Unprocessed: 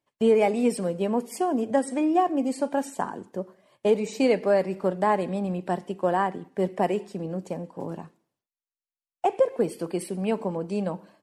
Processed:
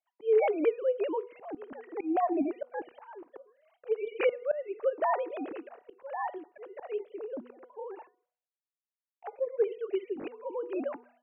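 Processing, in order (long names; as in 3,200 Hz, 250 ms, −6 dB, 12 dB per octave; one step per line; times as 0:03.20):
three sine waves on the formant tracks
volume swells 293 ms
hum removal 243.7 Hz, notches 6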